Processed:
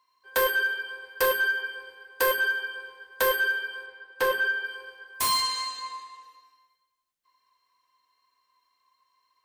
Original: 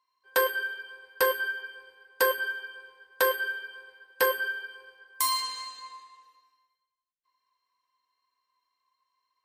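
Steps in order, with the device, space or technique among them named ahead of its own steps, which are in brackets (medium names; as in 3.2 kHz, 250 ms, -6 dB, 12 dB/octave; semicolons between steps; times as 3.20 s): saturation between pre-emphasis and de-emphasis (treble shelf 6.9 kHz +10.5 dB; saturation -24 dBFS, distortion -7 dB; treble shelf 6.9 kHz -10.5 dB); 3.86–4.65 s: low-pass 3.6 kHz 6 dB/octave; trim +7.5 dB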